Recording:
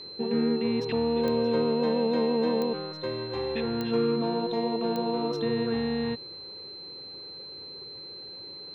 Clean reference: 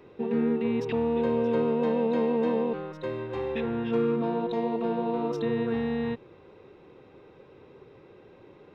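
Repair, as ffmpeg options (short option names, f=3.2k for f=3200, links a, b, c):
-af "adeclick=t=4,bandreject=f=4.1k:w=30"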